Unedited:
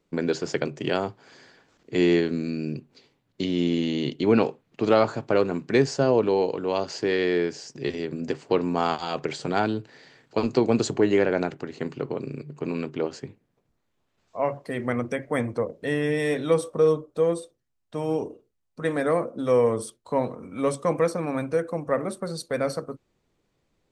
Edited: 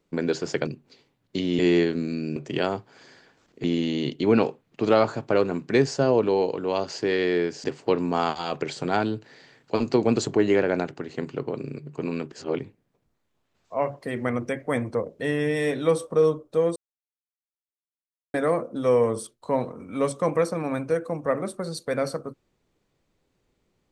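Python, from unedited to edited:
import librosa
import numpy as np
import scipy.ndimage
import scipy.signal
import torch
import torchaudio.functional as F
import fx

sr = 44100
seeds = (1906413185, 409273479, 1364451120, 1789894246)

y = fx.edit(x, sr, fx.swap(start_s=0.67, length_s=1.28, other_s=2.72, other_length_s=0.92),
    fx.cut(start_s=7.64, length_s=0.63),
    fx.reverse_span(start_s=12.95, length_s=0.28),
    fx.silence(start_s=17.39, length_s=1.58), tone=tone)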